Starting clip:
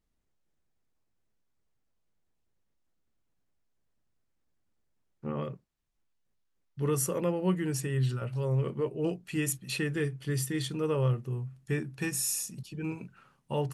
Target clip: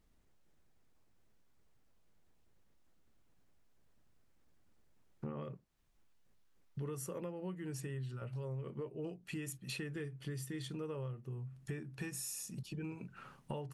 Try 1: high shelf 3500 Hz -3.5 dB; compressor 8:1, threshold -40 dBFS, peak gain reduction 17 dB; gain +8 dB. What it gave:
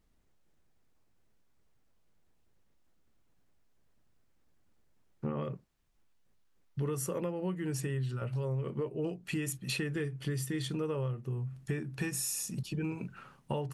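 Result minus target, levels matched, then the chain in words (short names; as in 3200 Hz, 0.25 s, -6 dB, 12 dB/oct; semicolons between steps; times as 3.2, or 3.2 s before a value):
compressor: peak gain reduction -8 dB
high shelf 3500 Hz -3.5 dB; compressor 8:1, threshold -49 dBFS, peak gain reduction 25 dB; gain +8 dB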